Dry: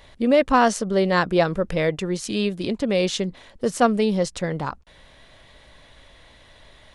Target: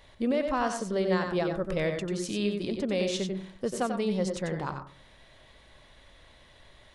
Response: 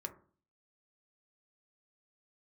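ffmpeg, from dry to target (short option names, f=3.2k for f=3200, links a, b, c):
-filter_complex "[0:a]alimiter=limit=-13dB:level=0:latency=1:release=313,asplit=2[a][b];[1:a]atrim=start_sample=2205,adelay=92[c];[b][c]afir=irnorm=-1:irlink=0,volume=-3dB[d];[a][d]amix=inputs=2:normalize=0,volume=-6.5dB"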